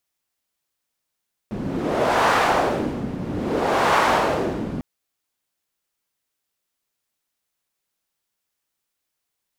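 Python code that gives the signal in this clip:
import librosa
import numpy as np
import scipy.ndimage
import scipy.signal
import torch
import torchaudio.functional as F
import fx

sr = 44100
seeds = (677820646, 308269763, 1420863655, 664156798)

y = fx.wind(sr, seeds[0], length_s=3.3, low_hz=200.0, high_hz=1000.0, q=1.4, gusts=2, swing_db=10.5)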